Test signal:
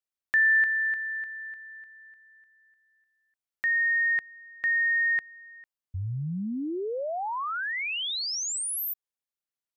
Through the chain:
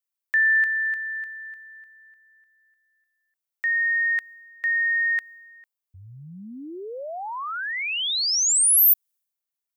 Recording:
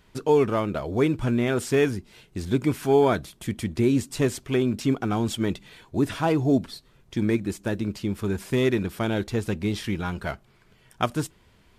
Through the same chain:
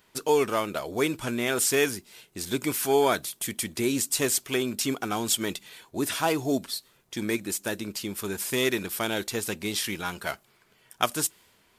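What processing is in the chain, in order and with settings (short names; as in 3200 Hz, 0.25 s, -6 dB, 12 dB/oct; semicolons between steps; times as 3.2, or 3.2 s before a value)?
RIAA curve recording; mismatched tape noise reduction decoder only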